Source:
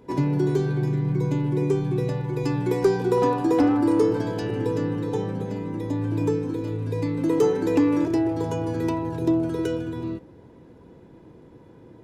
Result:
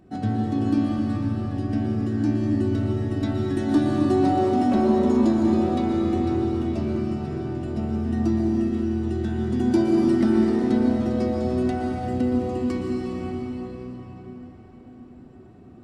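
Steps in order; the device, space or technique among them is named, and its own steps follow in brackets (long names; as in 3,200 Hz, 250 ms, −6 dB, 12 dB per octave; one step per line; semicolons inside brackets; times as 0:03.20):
slowed and reverbed (speed change −24%; convolution reverb RT60 4.9 s, pre-delay 110 ms, DRR −1.5 dB)
level −2.5 dB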